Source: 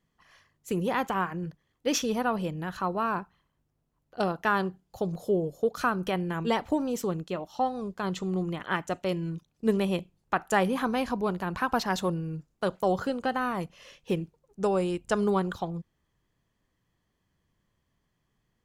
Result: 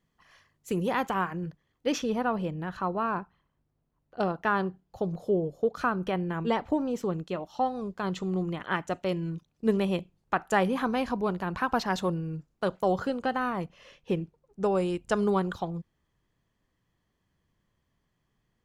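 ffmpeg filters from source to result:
-af "asetnsamples=n=441:p=0,asendcmd='1.38 lowpass f 5200;1.92 lowpass f 2400;7.14 lowpass f 5300;13.5 lowpass f 2900;14.75 lowpass f 7400',lowpass=f=12k:p=1"

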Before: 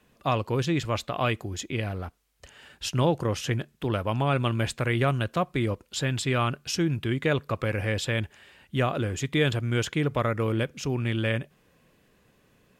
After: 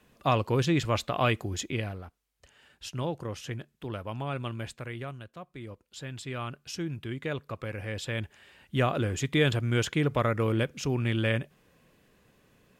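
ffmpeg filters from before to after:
-af "volume=19dB,afade=t=out:st=1.63:d=0.4:silence=0.334965,afade=t=out:st=4.48:d=0.85:silence=0.316228,afade=t=in:st=5.33:d=1.49:silence=0.298538,afade=t=in:st=7.86:d=0.98:silence=0.398107"

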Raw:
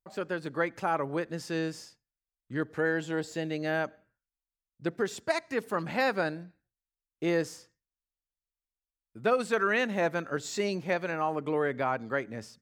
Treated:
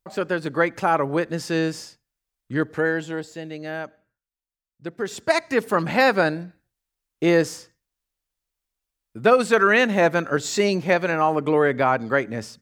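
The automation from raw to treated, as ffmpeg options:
-af "volume=20dB,afade=t=out:st=2.54:d=0.79:silence=0.316228,afade=t=in:st=4.95:d=0.43:silence=0.281838"

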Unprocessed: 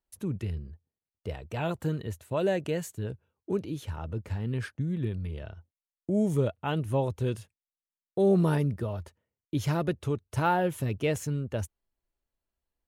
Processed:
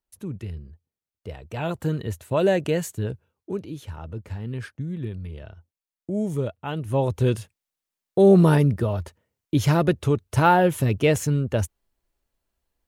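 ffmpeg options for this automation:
-af "volume=15.5dB,afade=t=in:st=1.32:d=0.93:silence=0.421697,afade=t=out:st=3.01:d=0.51:silence=0.446684,afade=t=in:st=6.8:d=0.41:silence=0.375837"

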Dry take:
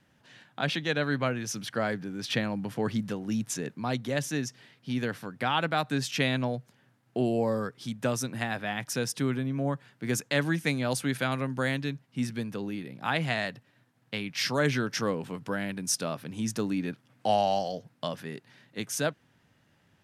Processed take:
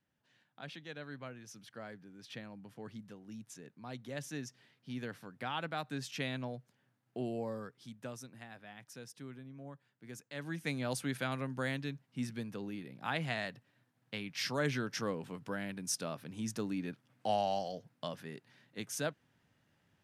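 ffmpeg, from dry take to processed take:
-af "volume=1dB,afade=t=in:st=3.71:d=0.62:silence=0.446684,afade=t=out:st=7.3:d=1.11:silence=0.375837,afade=t=in:st=10.32:d=0.47:silence=0.251189"

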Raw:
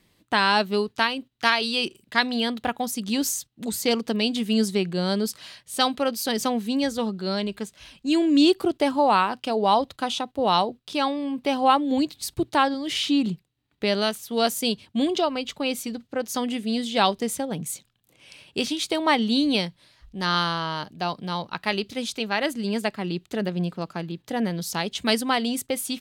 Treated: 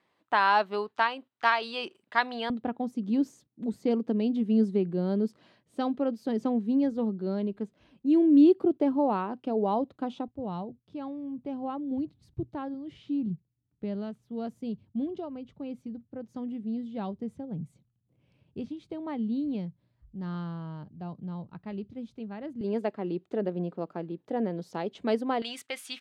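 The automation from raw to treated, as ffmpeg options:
-af "asetnsamples=n=441:p=0,asendcmd='2.5 bandpass f 280;10.28 bandpass f 110;22.61 bandpass f 420;25.42 bandpass f 1900',bandpass=f=950:t=q:w=1.1:csg=0"

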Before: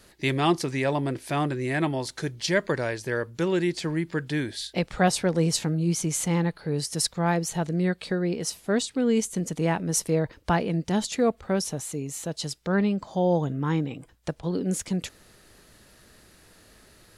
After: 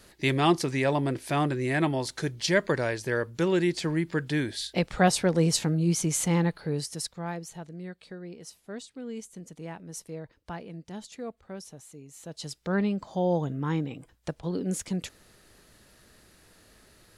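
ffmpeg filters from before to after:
-af "volume=12dB,afade=t=out:st=6.58:d=0.43:silence=0.375837,afade=t=out:st=7.01:d=0.71:silence=0.473151,afade=t=in:st=12.12:d=0.56:silence=0.251189"

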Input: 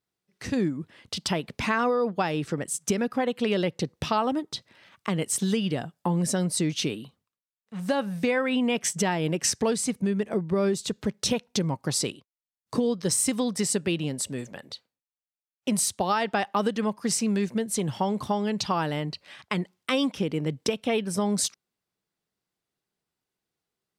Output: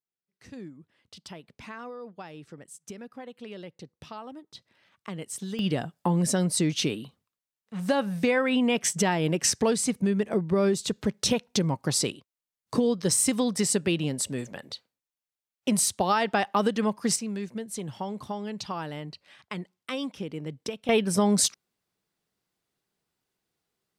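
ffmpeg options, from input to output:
-af "asetnsamples=n=441:p=0,asendcmd='4.55 volume volume -9.5dB;5.59 volume volume 1dB;17.16 volume volume -7.5dB;20.89 volume volume 3.5dB',volume=-16dB"

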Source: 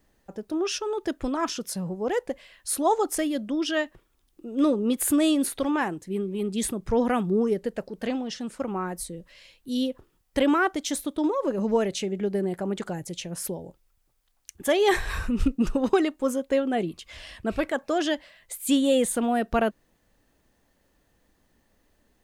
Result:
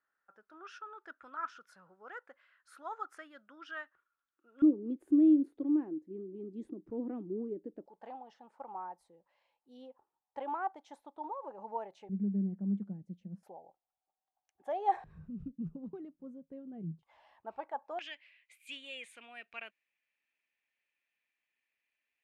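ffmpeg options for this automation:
-af "asetnsamples=n=441:p=0,asendcmd='4.62 bandpass f 310;7.86 bandpass f 850;12.09 bandpass f 200;13.43 bandpass f 770;15.04 bandpass f 160;17.03 bandpass f 860;17.99 bandpass f 2400',bandpass=f=1.4k:t=q:w=8.6:csg=0"

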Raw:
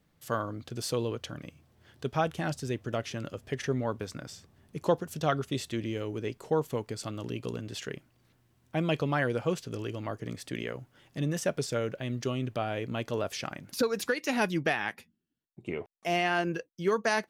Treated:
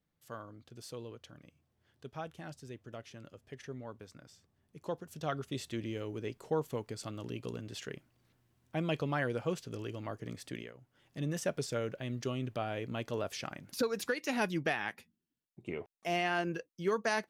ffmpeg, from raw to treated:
-af "volume=7.5dB,afade=t=in:st=4.77:d=0.98:silence=0.354813,afade=t=out:st=10.51:d=0.22:silence=0.251189,afade=t=in:st=10.73:d=0.59:silence=0.237137"

